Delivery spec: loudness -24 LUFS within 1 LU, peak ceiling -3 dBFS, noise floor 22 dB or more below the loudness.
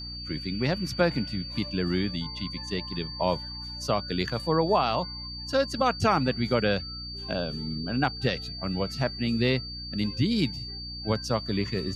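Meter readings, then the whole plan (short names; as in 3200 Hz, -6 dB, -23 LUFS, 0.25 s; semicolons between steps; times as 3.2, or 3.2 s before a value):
hum 60 Hz; harmonics up to 300 Hz; hum level -39 dBFS; steady tone 4600 Hz; tone level -37 dBFS; loudness -28.5 LUFS; peak -11.0 dBFS; loudness target -24.0 LUFS
-> de-hum 60 Hz, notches 5; notch 4600 Hz, Q 30; gain +4.5 dB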